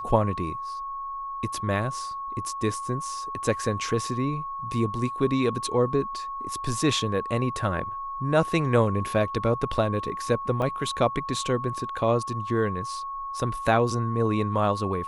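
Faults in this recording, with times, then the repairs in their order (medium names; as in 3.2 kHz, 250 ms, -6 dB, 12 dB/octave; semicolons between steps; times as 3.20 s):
whine 1.1 kHz -31 dBFS
10.62 s: dropout 3.4 ms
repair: band-stop 1.1 kHz, Q 30; interpolate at 10.62 s, 3.4 ms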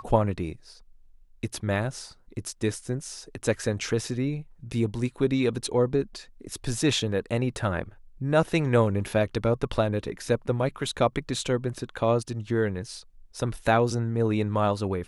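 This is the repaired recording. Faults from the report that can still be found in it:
nothing left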